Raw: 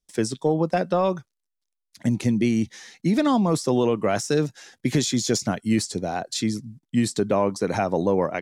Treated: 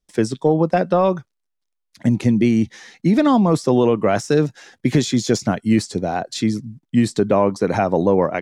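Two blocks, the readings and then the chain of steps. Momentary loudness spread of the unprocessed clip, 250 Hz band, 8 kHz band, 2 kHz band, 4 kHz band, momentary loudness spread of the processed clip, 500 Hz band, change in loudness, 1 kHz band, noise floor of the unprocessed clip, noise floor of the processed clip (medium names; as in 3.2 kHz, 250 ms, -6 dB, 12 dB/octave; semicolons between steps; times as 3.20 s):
7 LU, +5.5 dB, -1.5 dB, +4.0 dB, +0.5 dB, 7 LU, +5.5 dB, +5.0 dB, +5.0 dB, -82 dBFS, -77 dBFS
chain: treble shelf 4.1 kHz -9.5 dB; trim +5.5 dB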